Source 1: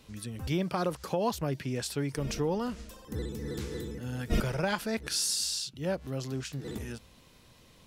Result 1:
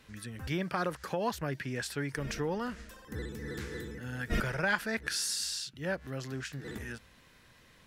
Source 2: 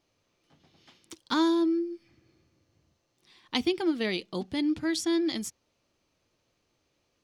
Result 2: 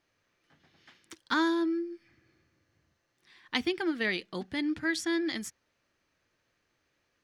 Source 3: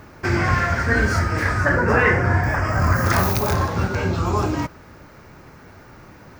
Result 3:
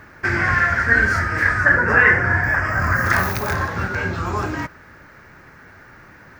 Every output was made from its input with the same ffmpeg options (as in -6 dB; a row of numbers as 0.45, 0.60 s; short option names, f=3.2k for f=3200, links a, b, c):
-af "equalizer=f=1.7k:t=o:w=0.78:g=12,volume=-4dB"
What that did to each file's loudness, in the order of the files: -2.5, -2.5, +2.0 LU